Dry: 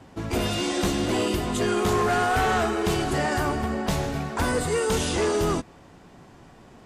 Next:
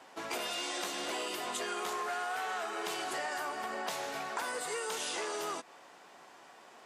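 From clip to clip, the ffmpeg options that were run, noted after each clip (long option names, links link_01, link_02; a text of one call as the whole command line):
ffmpeg -i in.wav -af "highpass=650,acompressor=threshold=-34dB:ratio=6" out.wav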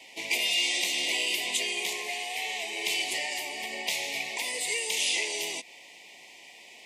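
ffmpeg -i in.wav -af "asuperstop=centerf=1400:order=8:qfactor=1.6,highshelf=frequency=1700:width_type=q:width=3:gain=9" out.wav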